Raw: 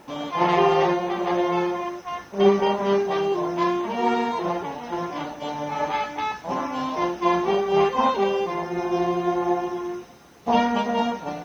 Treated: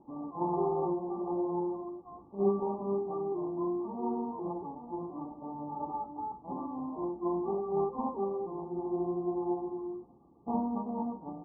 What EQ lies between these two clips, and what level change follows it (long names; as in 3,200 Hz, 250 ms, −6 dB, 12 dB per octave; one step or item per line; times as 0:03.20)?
Chebyshev low-pass with heavy ripple 1,200 Hz, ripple 9 dB
high-frequency loss of the air 460 metres
low-shelf EQ 240 Hz +7 dB
−8.0 dB